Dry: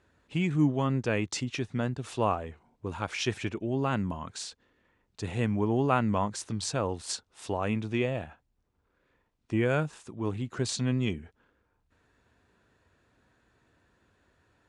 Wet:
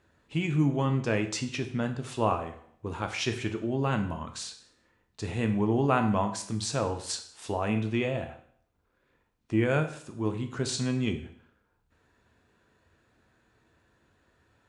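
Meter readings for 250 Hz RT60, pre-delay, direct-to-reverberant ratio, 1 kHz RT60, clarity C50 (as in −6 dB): 0.65 s, 9 ms, 6.0 dB, 0.60 s, 11.0 dB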